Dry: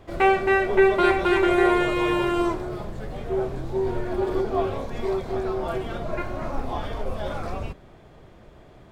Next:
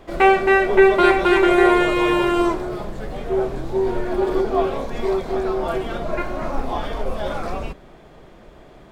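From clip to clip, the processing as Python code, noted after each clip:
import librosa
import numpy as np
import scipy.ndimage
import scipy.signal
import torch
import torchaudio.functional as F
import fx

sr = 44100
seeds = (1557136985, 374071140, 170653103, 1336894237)

y = fx.peak_eq(x, sr, hz=96.0, db=-12.5, octaves=0.69)
y = y * 10.0 ** (5.0 / 20.0)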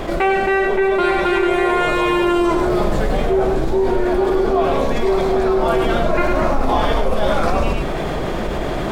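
y = fx.rider(x, sr, range_db=10, speed_s=0.5)
y = y + 10.0 ** (-7.5 / 20.0) * np.pad(y, (int(103 * sr / 1000.0), 0))[:len(y)]
y = fx.env_flatten(y, sr, amount_pct=70)
y = y * 10.0 ** (-5.0 / 20.0)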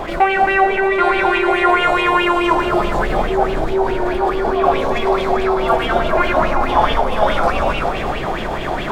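y = x + 10.0 ** (-6.5 / 20.0) * np.pad(x, (int(386 * sr / 1000.0), 0))[:len(x)]
y = fx.bell_lfo(y, sr, hz=4.7, low_hz=740.0, high_hz=3000.0, db=14)
y = y * 10.0 ** (-3.5 / 20.0)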